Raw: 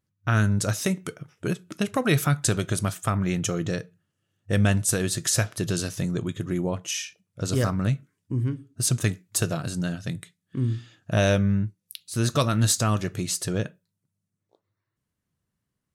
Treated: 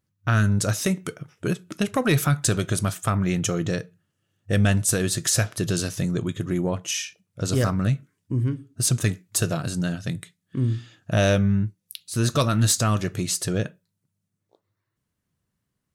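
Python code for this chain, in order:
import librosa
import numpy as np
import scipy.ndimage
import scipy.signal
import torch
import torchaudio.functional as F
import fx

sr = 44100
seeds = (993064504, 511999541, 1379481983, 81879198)

y = 10.0 ** (-12.0 / 20.0) * np.tanh(x / 10.0 ** (-12.0 / 20.0))
y = y * librosa.db_to_amplitude(2.5)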